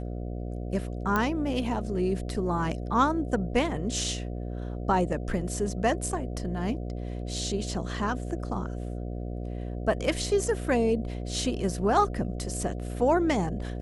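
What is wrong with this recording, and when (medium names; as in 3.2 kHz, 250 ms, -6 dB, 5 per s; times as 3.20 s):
buzz 60 Hz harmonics 12 -34 dBFS
1.16 s: pop -13 dBFS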